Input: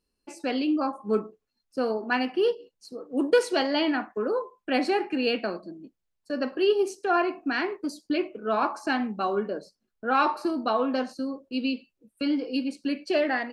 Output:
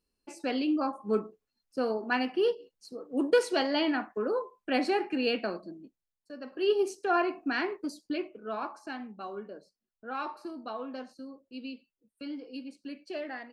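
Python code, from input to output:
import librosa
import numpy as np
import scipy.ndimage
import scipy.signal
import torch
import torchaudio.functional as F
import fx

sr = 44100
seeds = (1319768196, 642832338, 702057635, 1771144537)

y = fx.gain(x, sr, db=fx.line((5.74, -3.0), (6.41, -15.0), (6.71, -3.0), (7.73, -3.0), (8.92, -13.0)))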